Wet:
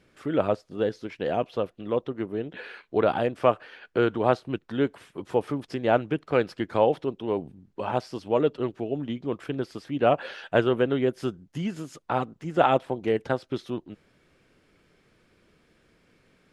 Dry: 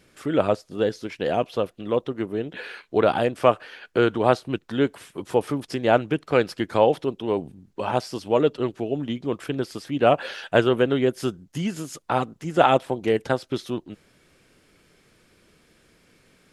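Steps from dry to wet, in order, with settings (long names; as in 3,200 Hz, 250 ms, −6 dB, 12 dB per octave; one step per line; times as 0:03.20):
high-shelf EQ 5,400 Hz −12 dB
level −3 dB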